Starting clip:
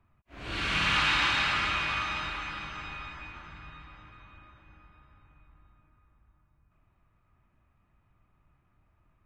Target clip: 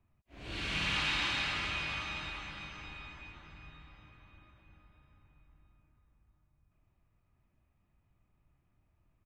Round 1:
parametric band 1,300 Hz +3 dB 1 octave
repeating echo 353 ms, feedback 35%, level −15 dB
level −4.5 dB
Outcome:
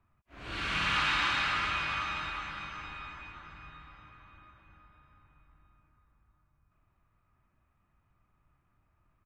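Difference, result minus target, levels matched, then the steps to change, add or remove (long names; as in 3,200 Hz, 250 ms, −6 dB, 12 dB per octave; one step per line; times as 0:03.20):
1,000 Hz band +5.0 dB
change: parametric band 1,300 Hz −7.5 dB 1 octave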